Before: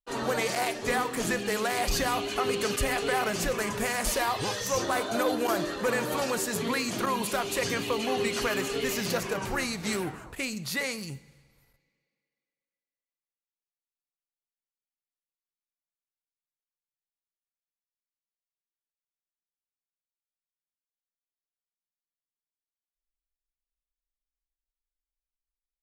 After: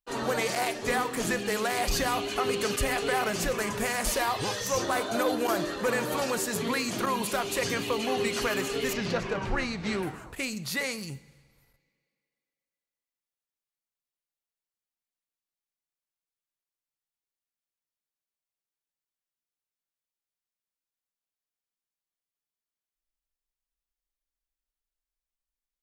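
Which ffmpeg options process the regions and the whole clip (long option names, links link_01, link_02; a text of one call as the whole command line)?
ffmpeg -i in.wav -filter_complex "[0:a]asettb=1/sr,asplit=3[link_01][link_02][link_03];[link_01]atrim=end=8.934[link_04];[link_02]atrim=start=8.93:end=10.03,asetpts=PTS-STARTPTS,afade=type=in:duration=0.004:curve=qsin,afade=type=out:start_time=1.096:duration=0.004:curve=qsin,lowpass=4100,lowshelf=frequency=67:gain=10.5[link_05];[link_03]atrim=start=10.026[link_06];[link_04][link_05]acrossfade=duration=0.004:curve1=hsin:curve2=qsin[link_07];[link_07][link_06]acrossfade=duration=0.004:curve1=qsin:curve2=hsin" out.wav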